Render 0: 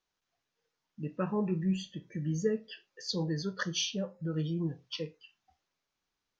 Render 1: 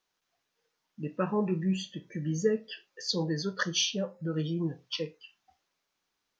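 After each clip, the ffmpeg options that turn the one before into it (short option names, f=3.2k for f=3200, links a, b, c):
-af "lowshelf=f=130:g=-10,volume=4.5dB"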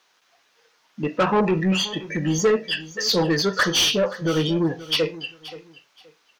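-filter_complex "[0:a]asplit=2[a][b];[b]highpass=f=720:p=1,volume=22dB,asoftclip=type=tanh:threshold=-14.5dB[c];[a][c]amix=inputs=2:normalize=0,lowpass=f=4.3k:p=1,volume=-6dB,aecho=1:1:526|1052:0.141|0.0325,volume=4.5dB"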